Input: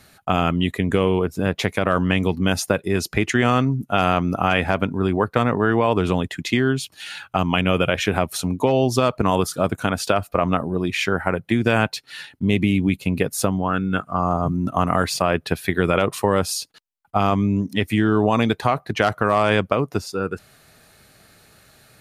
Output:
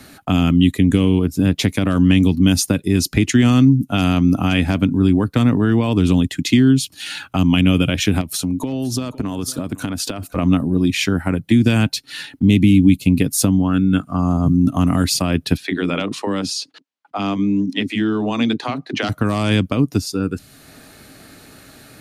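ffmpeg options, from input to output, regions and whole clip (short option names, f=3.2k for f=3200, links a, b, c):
-filter_complex "[0:a]asettb=1/sr,asplit=3[a][b][c];[a]atrim=end=8.214[d];[b]atrim=start=8.21:end=10.36,asetpts=PTS-STARTPTS,afade=t=in:d=0.004:c=qsin,afade=t=out:st=2.146:d=0.004:c=qsin,acompressor=threshold=-26dB:ratio=4:attack=3.2:release=140:knee=1:detection=peak,aecho=1:1:508:0.112,atrim=end_sample=94815[e];[c]atrim=start=10.356[f];[d][e]acrossfade=d=0.004:c1=hsin:c2=qsin[g];[g][f]acrossfade=d=0.004:c1=qsin:c2=hsin,asettb=1/sr,asplit=3[h][i][j];[h]atrim=end=15.574[k];[i]atrim=start=15.57:end=19.09,asetpts=PTS-STARTPTS,afade=t=in:d=0.004:c=qsin,afade=t=out:st=3.516:d=0.004:c=qsin,highpass=250,lowpass=4.9k,acrossover=split=340[l][m];[l]adelay=30[n];[n][m]amix=inputs=2:normalize=0,atrim=end_sample=155232[o];[j]atrim=start=19.086[p];[k][o]acrossfade=d=0.004:c1=hsin:c2=qsin[q];[q][p]acrossfade=d=0.004:c1=qsin:c2=hsin,equalizer=f=280:t=o:w=0.5:g=12.5,acrossover=split=210|3000[r][s][t];[s]acompressor=threshold=-42dB:ratio=2[u];[r][u][t]amix=inputs=3:normalize=0,volume=7.5dB"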